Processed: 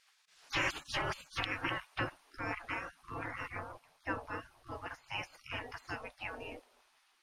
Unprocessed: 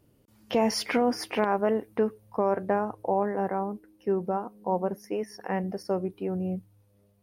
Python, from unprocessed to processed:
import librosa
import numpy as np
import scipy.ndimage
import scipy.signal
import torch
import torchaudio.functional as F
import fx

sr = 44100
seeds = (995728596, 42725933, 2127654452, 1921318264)

y = fx.spec_gate(x, sr, threshold_db=-30, keep='weak')
y = scipy.signal.sosfilt(scipy.signal.butter(2, 5600.0, 'lowpass', fs=sr, output='sos'), y)
y = y * 10.0 ** (14.5 / 20.0)